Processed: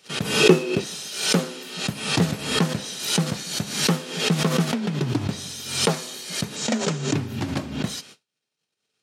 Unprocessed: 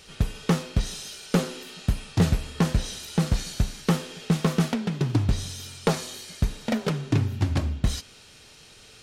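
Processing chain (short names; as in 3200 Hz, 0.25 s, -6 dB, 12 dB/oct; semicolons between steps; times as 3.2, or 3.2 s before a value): gate -45 dBFS, range -52 dB; HPF 140 Hz 24 dB/oct; in parallel at -2 dB: compressor, threshold -37 dBFS, peak gain reduction 18.5 dB; 0.4–0.84 on the sum: small resonant body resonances 370/2600 Hz, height 18 dB, ringing for 45 ms; 6.56–7.13 synth low-pass 7100 Hz, resonance Q 3.7; backwards sustainer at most 78 dB/s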